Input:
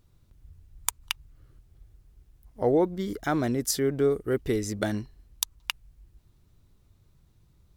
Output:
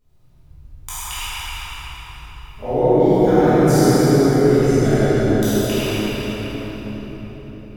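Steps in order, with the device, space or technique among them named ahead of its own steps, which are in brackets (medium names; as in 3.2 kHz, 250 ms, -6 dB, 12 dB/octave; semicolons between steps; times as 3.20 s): simulated room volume 160 m³, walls hard, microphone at 1.4 m; cathedral (reverberation RT60 4.8 s, pre-delay 15 ms, DRR -9.5 dB); trim -9.5 dB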